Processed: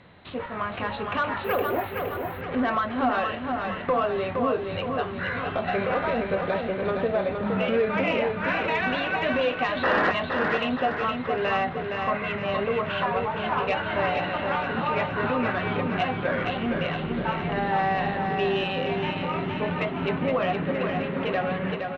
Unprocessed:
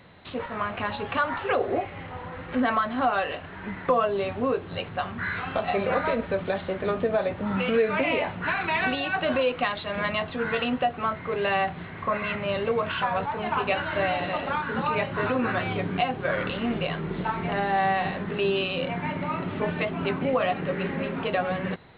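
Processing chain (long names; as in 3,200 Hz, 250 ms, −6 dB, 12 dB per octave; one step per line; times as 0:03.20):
0:09.83–0:10.12: sound drawn into the spectrogram noise 220–2,000 Hz −21 dBFS
soft clipping −14.5 dBFS, distortion −22 dB
high-frequency loss of the air 52 metres
repeating echo 466 ms, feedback 50%, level −5 dB
0:01.44–0:02.41: bad sample-rate conversion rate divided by 3×, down none, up hold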